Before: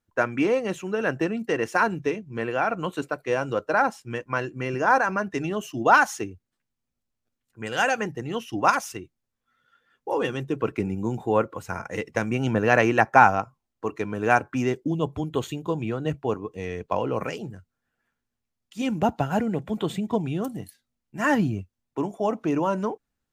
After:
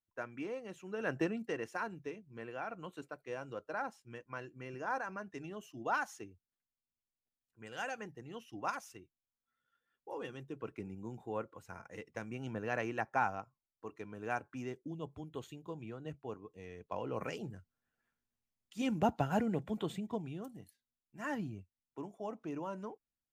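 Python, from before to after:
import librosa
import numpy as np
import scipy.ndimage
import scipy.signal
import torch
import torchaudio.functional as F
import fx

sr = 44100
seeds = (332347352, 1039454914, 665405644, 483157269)

y = fx.gain(x, sr, db=fx.line((0.73, -19.0), (1.21, -8.0), (1.79, -17.5), (16.77, -17.5), (17.41, -8.0), (19.59, -8.0), (20.47, -17.0)))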